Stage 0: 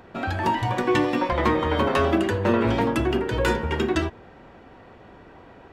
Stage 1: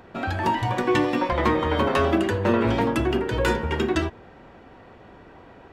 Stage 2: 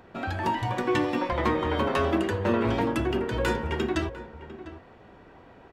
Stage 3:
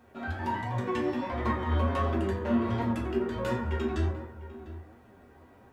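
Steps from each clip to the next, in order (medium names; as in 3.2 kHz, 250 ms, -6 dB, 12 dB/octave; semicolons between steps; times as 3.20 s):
no audible change
echo from a far wall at 120 m, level -14 dB; trim -4 dB
bit crusher 11-bit; reverberation RT60 0.75 s, pre-delay 6 ms, DRR -2.5 dB; flange 1.4 Hz, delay 7.7 ms, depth 6.1 ms, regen +45%; trim -6.5 dB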